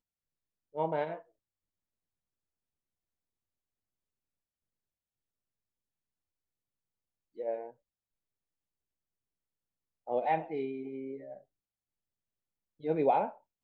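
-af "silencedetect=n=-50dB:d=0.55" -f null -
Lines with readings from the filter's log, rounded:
silence_start: 0.00
silence_end: 0.74 | silence_duration: 0.74
silence_start: 1.21
silence_end: 7.38 | silence_duration: 6.16
silence_start: 7.71
silence_end: 10.07 | silence_duration: 2.37
silence_start: 11.41
silence_end: 12.80 | silence_duration: 1.39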